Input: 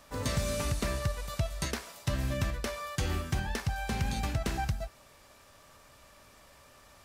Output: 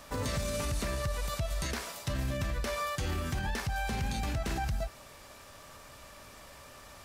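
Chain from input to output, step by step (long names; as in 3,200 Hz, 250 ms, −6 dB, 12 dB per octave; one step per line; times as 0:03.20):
brickwall limiter −31 dBFS, peak gain reduction 10.5 dB
level +6 dB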